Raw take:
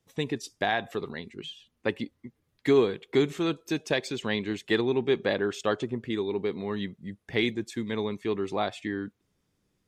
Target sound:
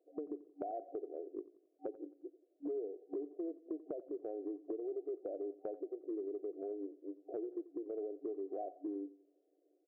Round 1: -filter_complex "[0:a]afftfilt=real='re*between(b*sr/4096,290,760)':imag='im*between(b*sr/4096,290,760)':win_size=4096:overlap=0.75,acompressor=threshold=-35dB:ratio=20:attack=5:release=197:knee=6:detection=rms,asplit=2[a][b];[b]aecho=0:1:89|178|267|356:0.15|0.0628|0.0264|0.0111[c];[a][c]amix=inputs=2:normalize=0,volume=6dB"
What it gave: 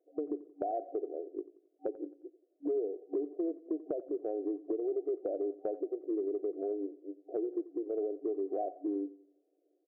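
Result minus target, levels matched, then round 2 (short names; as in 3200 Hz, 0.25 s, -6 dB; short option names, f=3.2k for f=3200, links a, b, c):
compressor: peak gain reduction -7 dB
-filter_complex "[0:a]afftfilt=real='re*between(b*sr/4096,290,760)':imag='im*between(b*sr/4096,290,760)':win_size=4096:overlap=0.75,acompressor=threshold=-42.5dB:ratio=20:attack=5:release=197:knee=6:detection=rms,asplit=2[a][b];[b]aecho=0:1:89|178|267|356:0.15|0.0628|0.0264|0.0111[c];[a][c]amix=inputs=2:normalize=0,volume=6dB"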